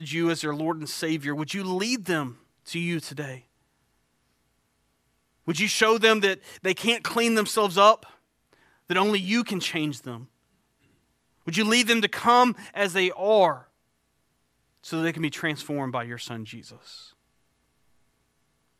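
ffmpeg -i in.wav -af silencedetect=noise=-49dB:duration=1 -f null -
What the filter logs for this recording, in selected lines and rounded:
silence_start: 3.42
silence_end: 5.47 | silence_duration: 2.05
silence_start: 10.26
silence_end: 11.47 | silence_duration: 1.22
silence_start: 13.65
silence_end: 14.77 | silence_duration: 1.13
silence_start: 17.11
silence_end: 18.80 | silence_duration: 1.69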